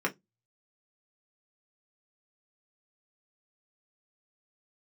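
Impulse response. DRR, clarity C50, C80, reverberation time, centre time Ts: -1.5 dB, 22.0 dB, 35.0 dB, 0.15 s, 9 ms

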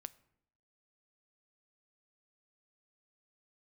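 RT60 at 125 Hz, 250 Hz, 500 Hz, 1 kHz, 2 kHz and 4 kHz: 0.80, 0.85, 0.75, 0.70, 0.65, 0.50 s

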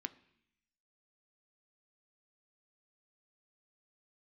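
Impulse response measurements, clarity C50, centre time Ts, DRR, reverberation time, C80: 19.0 dB, 4 ms, 11.0 dB, 0.70 s, 21.5 dB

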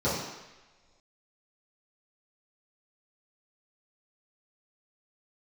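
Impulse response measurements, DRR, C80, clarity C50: -12.0 dB, 4.5 dB, 1.0 dB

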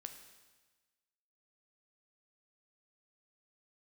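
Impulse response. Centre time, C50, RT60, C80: 20 ms, 8.5 dB, 1.3 s, 10.0 dB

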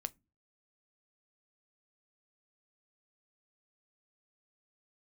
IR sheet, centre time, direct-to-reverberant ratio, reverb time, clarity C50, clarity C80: 2 ms, 13.0 dB, not exponential, 28.5 dB, 37.0 dB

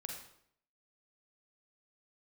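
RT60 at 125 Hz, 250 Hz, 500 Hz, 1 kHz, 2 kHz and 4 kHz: 0.75, 0.70, 0.70, 0.65, 0.60, 0.55 s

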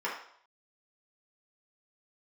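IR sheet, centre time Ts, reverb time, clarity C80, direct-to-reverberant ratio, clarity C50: 36 ms, 0.65 s, 8.5 dB, -6.5 dB, 4.5 dB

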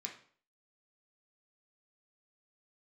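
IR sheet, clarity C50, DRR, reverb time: 8.0 dB, -0.5 dB, 0.50 s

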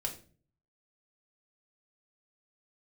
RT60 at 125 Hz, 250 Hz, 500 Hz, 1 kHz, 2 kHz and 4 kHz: 0.80, 0.60, 0.50, 0.35, 0.35, 0.30 s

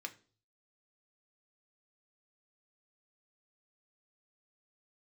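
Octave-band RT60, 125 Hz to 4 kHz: 0.80, 0.50, 0.45, 0.35, 0.35, 0.40 s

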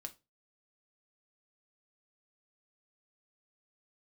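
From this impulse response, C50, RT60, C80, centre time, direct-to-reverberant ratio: 19.0 dB, 0.25 s, 27.0 dB, 4 ms, 6.0 dB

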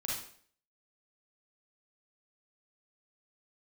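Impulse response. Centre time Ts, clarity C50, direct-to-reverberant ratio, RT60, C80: 55 ms, -1.0 dB, -5.0 dB, 0.55 s, 6.0 dB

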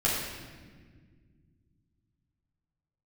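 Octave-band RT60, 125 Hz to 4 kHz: 3.6, 3.0, 2.0, 1.3, 1.5, 1.2 s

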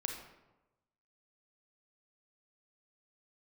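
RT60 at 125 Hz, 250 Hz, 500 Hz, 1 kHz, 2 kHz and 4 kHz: 1.2, 1.1, 1.1, 1.0, 0.80, 0.60 s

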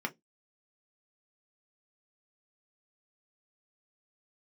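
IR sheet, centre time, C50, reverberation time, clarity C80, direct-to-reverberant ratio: 5 ms, 24.0 dB, 0.15 s, 36.0 dB, 2.0 dB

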